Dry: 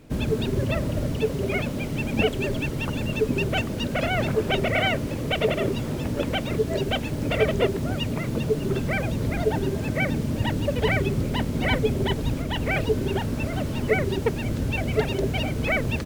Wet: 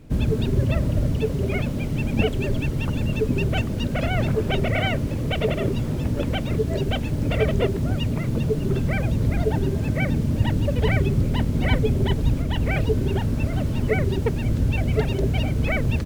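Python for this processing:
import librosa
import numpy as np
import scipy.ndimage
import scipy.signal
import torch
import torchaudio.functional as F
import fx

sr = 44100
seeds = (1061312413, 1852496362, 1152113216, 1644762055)

y = fx.low_shelf(x, sr, hz=180.0, db=11.0)
y = y * 10.0 ** (-2.5 / 20.0)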